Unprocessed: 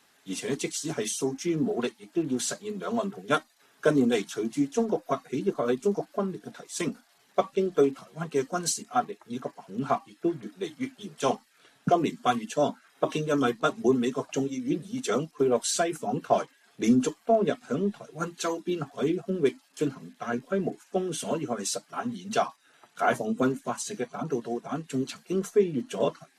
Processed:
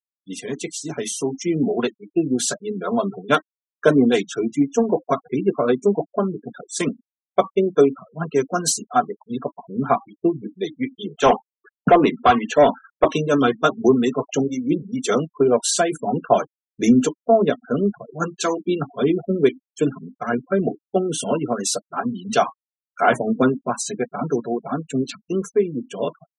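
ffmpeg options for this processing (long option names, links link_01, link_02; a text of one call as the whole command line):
ffmpeg -i in.wav -filter_complex "[0:a]asettb=1/sr,asplit=3[link_01][link_02][link_03];[link_01]atrim=end=10.964[link_04];[link_02]atrim=start=10.96:end=13.08,asetpts=PTS-STARTPTS,afade=type=in:duration=0.004:curve=qsin,afade=type=out:start_time=2.116:duration=0.004:curve=qsin,asplit=2[link_05][link_06];[link_06]highpass=frequency=720:poles=1,volume=17dB,asoftclip=type=tanh:threshold=-10.5dB[link_07];[link_05][link_07]amix=inputs=2:normalize=0,lowpass=frequency=1400:poles=1,volume=-6dB[link_08];[link_03]atrim=start=13.076[link_09];[link_04][link_08]acrossfade=duration=0.004:curve1=hsin:curve2=qsin[link_10];[link_10][link_09]acrossfade=duration=0.004:curve1=qsin:curve2=hsin,agate=range=-8dB:threshold=-52dB:ratio=16:detection=peak,afftfilt=real='re*gte(hypot(re,im),0.0126)':imag='im*gte(hypot(re,im),0.0126)':win_size=1024:overlap=0.75,dynaudnorm=framelen=160:gausssize=17:maxgain=6.5dB,volume=1.5dB" out.wav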